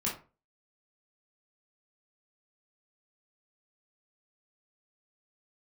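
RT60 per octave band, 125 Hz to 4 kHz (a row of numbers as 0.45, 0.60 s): 0.45, 0.35, 0.35, 0.35, 0.30, 0.20 s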